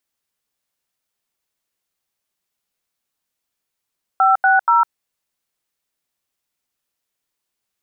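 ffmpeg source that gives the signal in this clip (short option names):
-f lavfi -i "aevalsrc='0.224*clip(min(mod(t,0.239),0.155-mod(t,0.239))/0.002,0,1)*(eq(floor(t/0.239),0)*(sin(2*PI*770*mod(t,0.239))+sin(2*PI*1336*mod(t,0.239)))+eq(floor(t/0.239),1)*(sin(2*PI*770*mod(t,0.239))+sin(2*PI*1477*mod(t,0.239)))+eq(floor(t/0.239),2)*(sin(2*PI*941*mod(t,0.239))+sin(2*PI*1336*mod(t,0.239))))':d=0.717:s=44100"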